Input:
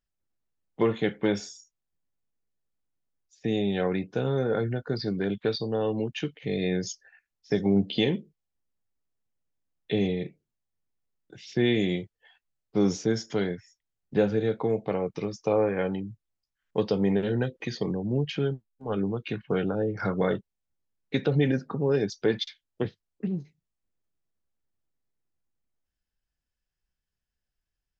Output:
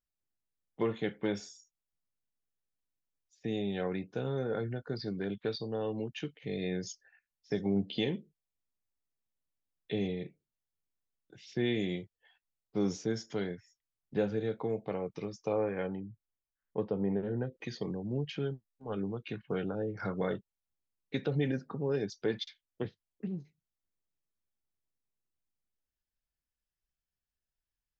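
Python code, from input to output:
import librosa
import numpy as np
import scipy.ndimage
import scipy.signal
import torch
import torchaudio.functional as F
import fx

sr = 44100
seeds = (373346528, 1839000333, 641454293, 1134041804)

y = fx.lowpass(x, sr, hz=fx.line((15.86, 1900.0), (17.51, 1200.0)), slope=12, at=(15.86, 17.51), fade=0.02)
y = y * librosa.db_to_amplitude(-7.5)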